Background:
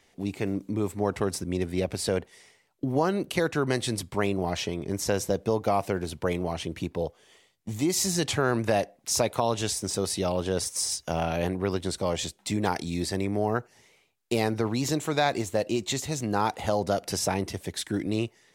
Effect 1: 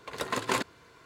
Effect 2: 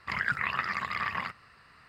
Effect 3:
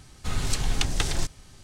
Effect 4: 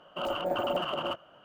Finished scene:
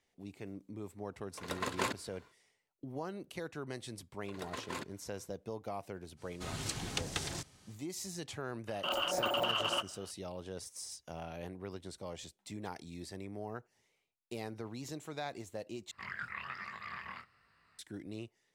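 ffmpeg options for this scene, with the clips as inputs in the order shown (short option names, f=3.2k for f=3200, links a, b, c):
-filter_complex "[1:a]asplit=2[a][b];[0:a]volume=-16.5dB[c];[b]alimiter=limit=-16dB:level=0:latency=1:release=17[d];[3:a]highpass=100[e];[4:a]tiltshelf=f=1.4k:g=-7[f];[2:a]flanger=delay=18.5:depth=7.2:speed=1.2[g];[c]asplit=2[h][i];[h]atrim=end=15.914[j];[g]atrim=end=1.88,asetpts=PTS-STARTPTS,volume=-9.5dB[k];[i]atrim=start=17.786[l];[a]atrim=end=1.05,asetpts=PTS-STARTPTS,volume=-6dB,afade=t=in:d=0.1,afade=t=out:st=0.95:d=0.1,adelay=1300[m];[d]atrim=end=1.05,asetpts=PTS-STARTPTS,volume=-12.5dB,afade=t=in:d=0.004:c=hsin,afade=t=out:st=1.046:d=0.004:c=hsin,adelay=185661S[n];[e]atrim=end=1.63,asetpts=PTS-STARTPTS,volume=-8.5dB,afade=t=in:d=0.05,afade=t=out:st=1.58:d=0.05,adelay=6160[o];[f]atrim=end=1.44,asetpts=PTS-STARTPTS,volume=-0.5dB,afade=t=in:d=0.004:c=hsin,afade=t=out:st=1.436:d=0.004:c=hsin,adelay=8670[p];[j][k]acrossfade=d=0.004:c1=hsin:c2=hsin[q];[q][l]acrossfade=d=0.004:c1=hsin:c2=hsin[r];[r][m][n][o][p]amix=inputs=5:normalize=0"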